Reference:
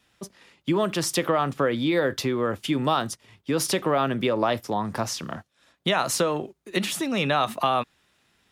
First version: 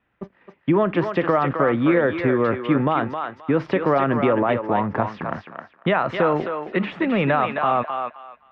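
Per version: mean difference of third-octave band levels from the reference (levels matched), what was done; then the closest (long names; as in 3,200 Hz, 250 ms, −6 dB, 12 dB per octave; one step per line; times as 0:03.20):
8.0 dB: mu-law and A-law mismatch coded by A
low-pass filter 2,200 Hz 24 dB per octave
brickwall limiter −16 dBFS, peak gain reduction 6.5 dB
feedback echo with a high-pass in the loop 264 ms, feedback 24%, high-pass 660 Hz, level −4 dB
level +6.5 dB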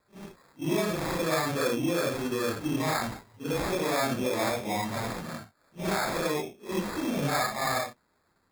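10.5 dB: random phases in long frames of 200 ms
flat-topped bell 3,000 Hz −9 dB 1 octave
in parallel at −2.5 dB: brickwall limiter −18.5 dBFS, peak gain reduction 8.5 dB
on the sum: decimation without filtering 15×
level −8 dB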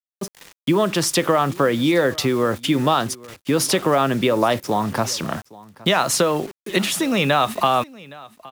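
4.0 dB: in parallel at +1 dB: downward compressor 5 to 1, threshold −33 dBFS, peak gain reduction 14.5 dB
on the sum: bit reduction 7 bits
pitch vibrato 0.51 Hz 7.8 cents
single-tap delay 817 ms −21.5 dB
level +3 dB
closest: third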